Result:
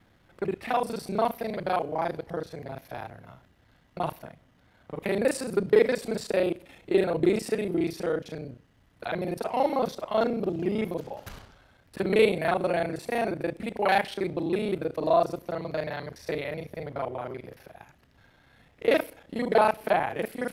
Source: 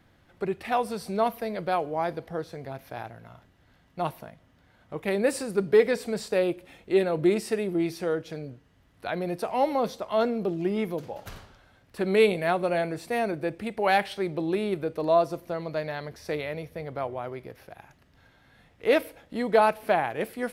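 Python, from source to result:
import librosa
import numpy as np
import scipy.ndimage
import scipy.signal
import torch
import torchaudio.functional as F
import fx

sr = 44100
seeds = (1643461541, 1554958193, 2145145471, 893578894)

y = fx.local_reverse(x, sr, ms=32.0)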